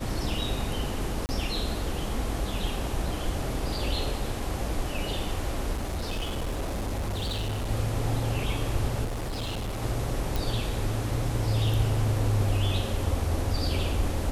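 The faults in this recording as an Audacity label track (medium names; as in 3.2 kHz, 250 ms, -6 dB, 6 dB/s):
1.260000	1.290000	dropout 29 ms
5.720000	7.710000	clipped -26.5 dBFS
9.040000	9.830000	clipped -28.5 dBFS
10.360000	10.360000	pop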